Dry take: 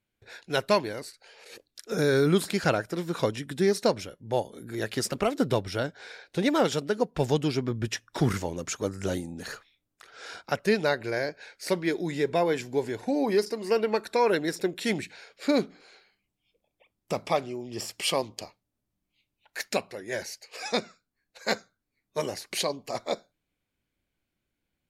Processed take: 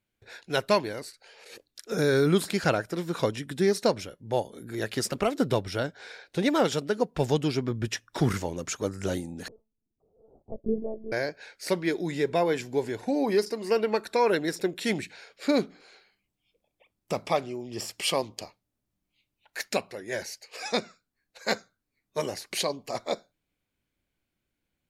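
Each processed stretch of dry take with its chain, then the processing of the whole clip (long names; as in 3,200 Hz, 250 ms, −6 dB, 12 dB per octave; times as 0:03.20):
0:09.48–0:11.12: Gaussian smoothing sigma 17 samples + one-pitch LPC vocoder at 8 kHz 220 Hz
whole clip: no processing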